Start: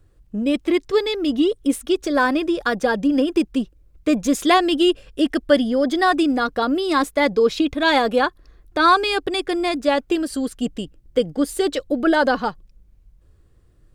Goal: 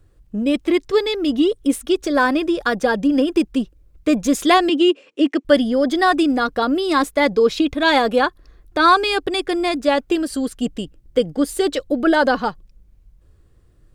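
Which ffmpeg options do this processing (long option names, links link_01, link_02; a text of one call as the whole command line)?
ffmpeg -i in.wav -filter_complex "[0:a]asettb=1/sr,asplit=3[link_01][link_02][link_03];[link_01]atrim=end=4.694[link_04];[link_02]atrim=start=4.69:end=5.45,asetpts=PTS-STARTPTS,afade=type=in:duration=0.004:curve=qsin,afade=type=out:start_time=0.756:duration=0.004:curve=qsin,highpass=frequency=270:width=0.5412,highpass=frequency=270:width=1.3066,equalizer=frequency=280:width_type=q:width=4:gain=4,equalizer=frequency=710:width_type=q:width=4:gain=-4,equalizer=frequency=1600:width_type=q:width=4:gain=-6,equalizer=frequency=2400:width_type=q:width=4:gain=4,equalizer=frequency=3500:width_type=q:width=4:gain=-5,equalizer=frequency=5000:width_type=q:width=4:gain=-7,lowpass=frequency=7000:width=0.5412,lowpass=frequency=7000:width=1.3066[link_05];[link_03]atrim=start=5.446[link_06];[link_04][link_05]acrossfade=duration=0.004:curve1=hsin:curve2=qsin[link_07];[link_07][link_06]acrossfade=duration=0.004:curve1=qsin:curve2=hsin,volume=1.5dB" out.wav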